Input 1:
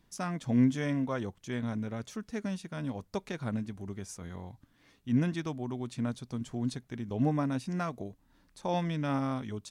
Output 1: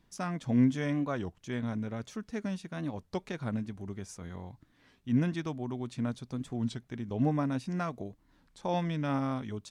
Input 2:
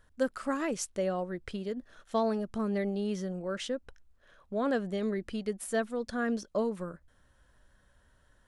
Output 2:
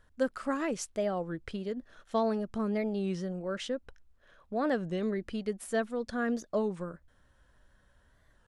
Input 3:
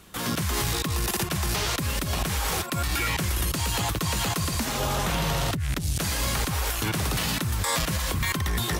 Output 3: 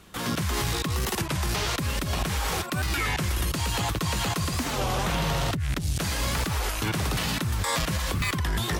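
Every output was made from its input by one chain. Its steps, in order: high shelf 7900 Hz -6.5 dB; record warp 33 1/3 rpm, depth 160 cents

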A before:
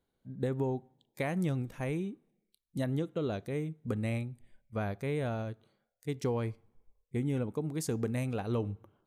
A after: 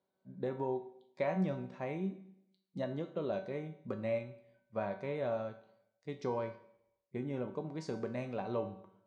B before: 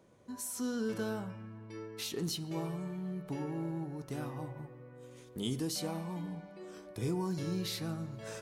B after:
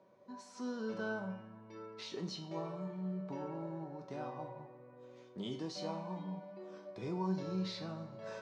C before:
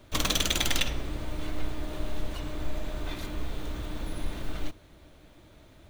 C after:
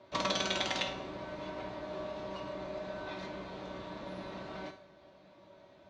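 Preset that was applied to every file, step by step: speaker cabinet 140–5200 Hz, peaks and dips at 600 Hz +9 dB, 990 Hz +7 dB, 3100 Hz -4 dB; resonator 190 Hz, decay 0.37 s, harmonics all, mix 80%; Schroeder reverb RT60 0.73 s, combs from 25 ms, DRR 12 dB; gain +5.5 dB

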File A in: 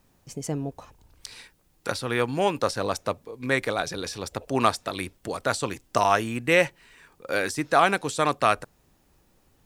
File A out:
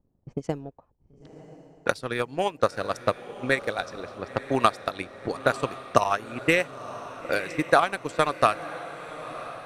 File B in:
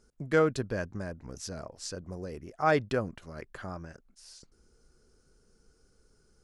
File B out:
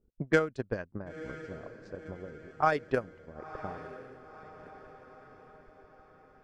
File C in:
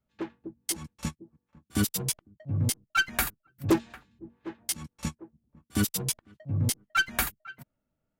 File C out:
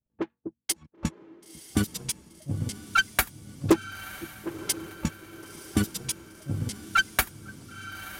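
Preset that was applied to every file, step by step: transient shaper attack +11 dB, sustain -9 dB; harmonic-percussive split harmonic -3 dB; low-pass opened by the level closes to 500 Hz, open at -19 dBFS; on a send: diffused feedback echo 0.991 s, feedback 52%, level -14 dB; on the sum: gain -5.5 dB

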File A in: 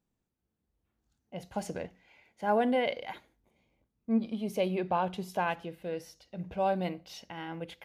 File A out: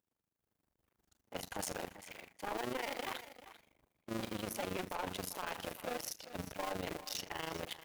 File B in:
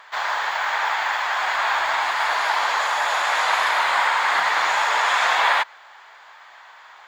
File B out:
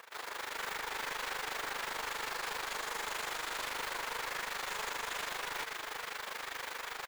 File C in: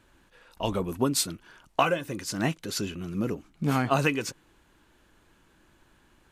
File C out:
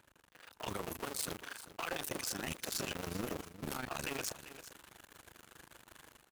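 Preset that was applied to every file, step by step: cycle switcher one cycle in 2, muted; HPF 44 Hz; low shelf 450 Hz -10 dB; AM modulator 25 Hz, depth 80%; reverse; compressor 5:1, threshold -42 dBFS; reverse; limiter -35.5 dBFS; AGC gain up to 8.5 dB; high shelf 7600 Hz +11 dB; soft clip -37.5 dBFS; on a send: echo 0.393 s -14 dB; on the sum: mismatched tape noise reduction decoder only; gain +5.5 dB

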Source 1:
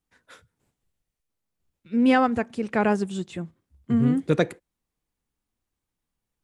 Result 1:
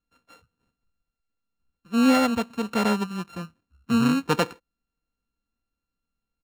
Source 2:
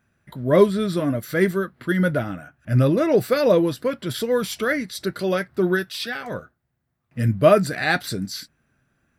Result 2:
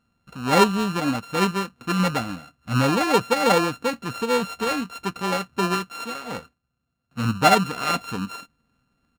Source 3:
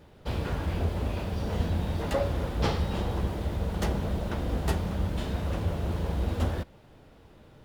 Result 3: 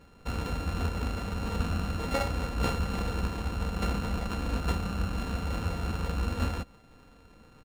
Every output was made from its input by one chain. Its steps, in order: sample sorter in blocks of 32 samples; high shelf 6900 Hz -11 dB; comb 4.1 ms, depth 37%; gain -1.5 dB

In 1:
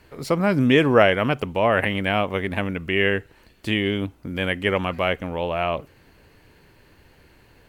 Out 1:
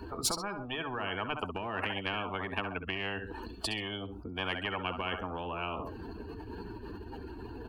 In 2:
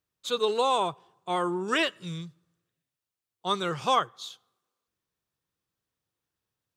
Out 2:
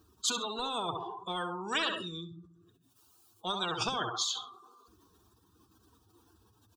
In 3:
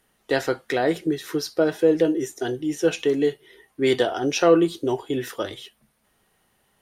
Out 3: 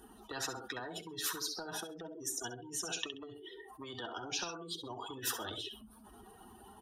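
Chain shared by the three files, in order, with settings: spectral contrast raised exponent 2.1; HPF 52 Hz; dynamic EQ 850 Hz, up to +6 dB, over -35 dBFS, Q 1.3; compressor 2:1, threshold -25 dBFS; fixed phaser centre 550 Hz, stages 6; feedback echo 66 ms, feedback 21%, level -15.5 dB; spectral compressor 10:1

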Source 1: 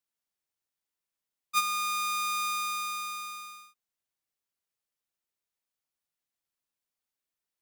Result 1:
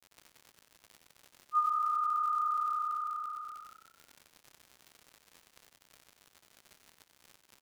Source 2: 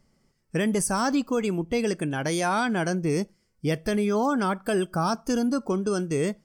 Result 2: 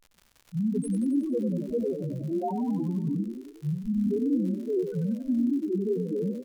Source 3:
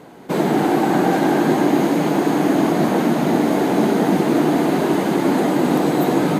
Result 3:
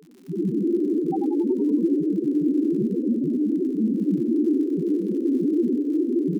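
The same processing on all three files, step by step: half-waves squared off; loudest bins only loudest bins 1; crackle 100/s -40 dBFS; vibrato 9.1 Hz 5.6 cents; frequency-shifting echo 92 ms, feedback 56%, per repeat +32 Hz, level -8 dB

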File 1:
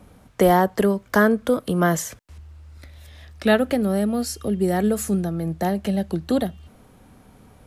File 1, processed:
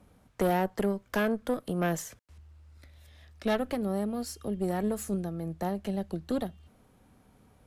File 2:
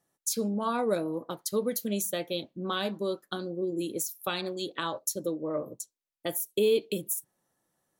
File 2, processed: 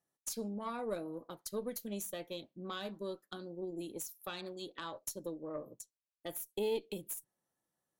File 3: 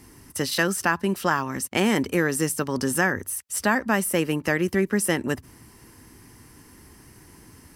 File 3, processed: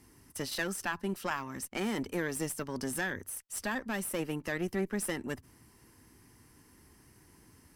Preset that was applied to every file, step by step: tube stage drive 13 dB, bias 0.7; gain -6.5 dB

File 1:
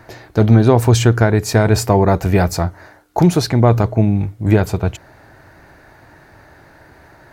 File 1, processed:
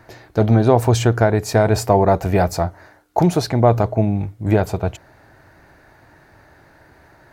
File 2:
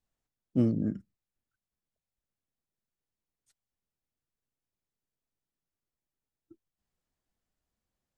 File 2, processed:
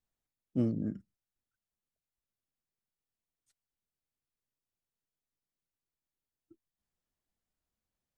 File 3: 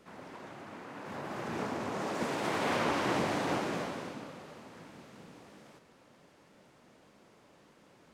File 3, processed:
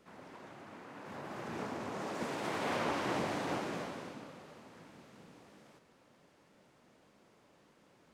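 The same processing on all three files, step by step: dynamic EQ 670 Hz, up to +7 dB, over -32 dBFS, Q 1.4; gain -4.5 dB

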